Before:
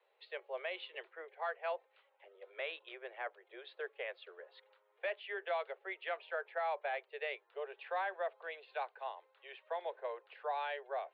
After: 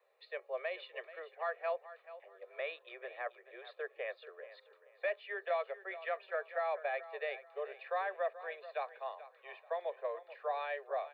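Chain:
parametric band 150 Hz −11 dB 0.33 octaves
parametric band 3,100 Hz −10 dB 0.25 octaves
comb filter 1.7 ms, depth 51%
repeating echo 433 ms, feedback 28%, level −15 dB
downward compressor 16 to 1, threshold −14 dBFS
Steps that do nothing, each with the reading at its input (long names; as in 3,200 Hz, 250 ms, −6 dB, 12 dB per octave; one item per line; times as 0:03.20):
parametric band 150 Hz: nothing at its input below 340 Hz
downward compressor, threshold −14 dBFS: peak of its input −23.0 dBFS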